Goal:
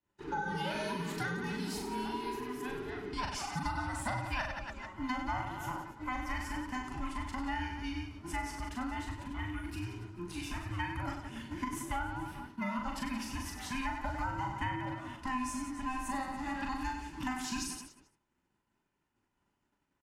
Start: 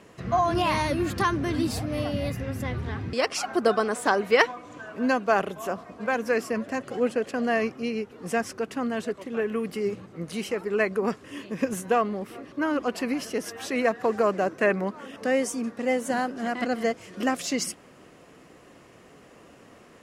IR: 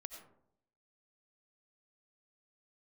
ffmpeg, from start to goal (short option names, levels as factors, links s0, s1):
-filter_complex "[0:a]afftfilt=real='real(if(between(b,1,1008),(2*floor((b-1)/24)+1)*24-b,b),0)':imag='imag(if(between(b,1,1008),(2*floor((b-1)/24)+1)*24-b,b),0)*if(between(b,1,1008),-1,1)':win_size=2048:overlap=0.75,asplit=2[s0][s1];[s1]aecho=0:1:40|96|174.4|284.2|437.8:0.631|0.398|0.251|0.158|0.1[s2];[s0][s2]amix=inputs=2:normalize=0,agate=range=0.0224:threshold=0.0178:ratio=3:detection=peak,acrossover=split=280|700[s3][s4][s5];[s3]acompressor=threshold=0.0316:ratio=4[s6];[s4]acompressor=threshold=0.0158:ratio=4[s7];[s5]acompressor=threshold=0.0398:ratio=4[s8];[s6][s7][s8]amix=inputs=3:normalize=0,volume=0.376"